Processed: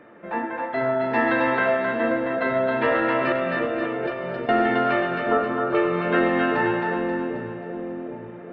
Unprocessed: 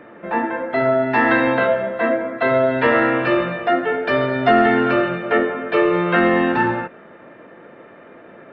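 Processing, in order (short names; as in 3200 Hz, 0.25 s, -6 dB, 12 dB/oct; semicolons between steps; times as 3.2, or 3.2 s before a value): 3.32–4.49 negative-ratio compressor -27 dBFS, ratio -1; 5.19–5.75 resonant high shelf 1700 Hz -10.5 dB, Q 3; split-band echo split 630 Hz, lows 0.78 s, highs 0.267 s, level -3 dB; gain -6.5 dB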